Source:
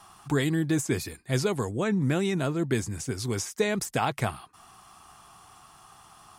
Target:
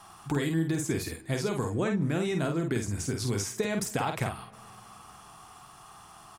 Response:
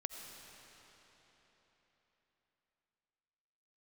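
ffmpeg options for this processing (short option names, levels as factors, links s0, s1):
-filter_complex "[0:a]acompressor=threshold=0.0447:ratio=6,atempo=1,asplit=2[s0][s1];[s1]adelay=49,volume=0.562[s2];[s0][s2]amix=inputs=2:normalize=0,asplit=2[s3][s4];[1:a]atrim=start_sample=2205,lowpass=2800[s5];[s4][s5]afir=irnorm=-1:irlink=0,volume=0.2[s6];[s3][s6]amix=inputs=2:normalize=0"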